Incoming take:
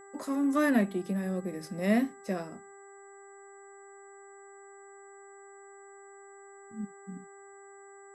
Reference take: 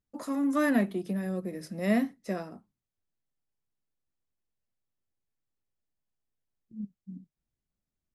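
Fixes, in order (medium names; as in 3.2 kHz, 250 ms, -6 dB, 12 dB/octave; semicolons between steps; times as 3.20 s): de-hum 396 Hz, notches 5; band-stop 7.8 kHz, Q 30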